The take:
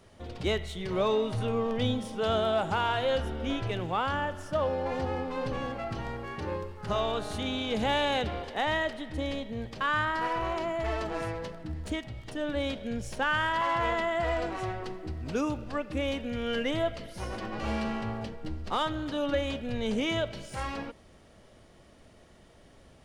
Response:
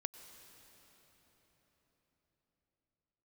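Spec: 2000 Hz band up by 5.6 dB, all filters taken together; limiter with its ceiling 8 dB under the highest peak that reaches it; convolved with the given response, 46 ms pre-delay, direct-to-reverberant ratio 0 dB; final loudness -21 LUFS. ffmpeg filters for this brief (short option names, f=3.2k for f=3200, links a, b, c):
-filter_complex "[0:a]equalizer=f=2k:t=o:g=7,alimiter=limit=-21.5dB:level=0:latency=1,asplit=2[a][b];[1:a]atrim=start_sample=2205,adelay=46[c];[b][c]afir=irnorm=-1:irlink=0,volume=2dB[d];[a][d]amix=inputs=2:normalize=0,volume=8dB"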